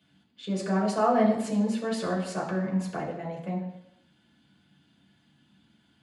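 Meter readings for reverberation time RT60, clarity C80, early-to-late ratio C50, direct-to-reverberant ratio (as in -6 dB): 0.85 s, 9.0 dB, 6.5 dB, -4.0 dB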